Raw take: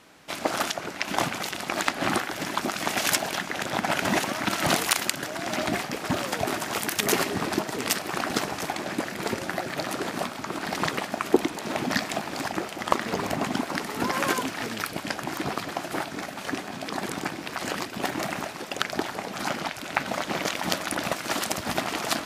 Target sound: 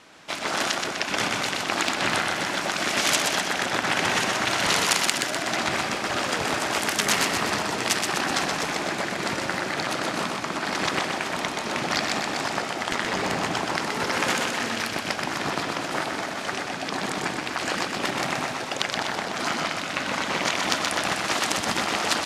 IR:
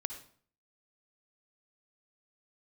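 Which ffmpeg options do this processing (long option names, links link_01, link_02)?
-filter_complex "[0:a]lowpass=8400,lowshelf=frequency=460:gain=-5,afftfilt=real='re*lt(hypot(re,im),0.178)':imag='im*lt(hypot(re,im),0.178)':win_size=1024:overlap=0.75,aeval=exprs='0.75*(cos(1*acos(clip(val(0)/0.75,-1,1)))-cos(1*PI/2))+0.0266*(cos(5*acos(clip(val(0)/0.75,-1,1)))-cos(5*PI/2))':channel_layout=same,asplit=2[link_01][link_02];[link_02]aecho=0:1:125|250|375|500|625|750|875|1000:0.596|0.351|0.207|0.122|0.0722|0.0426|0.0251|0.0148[link_03];[link_01][link_03]amix=inputs=2:normalize=0,volume=2.5dB"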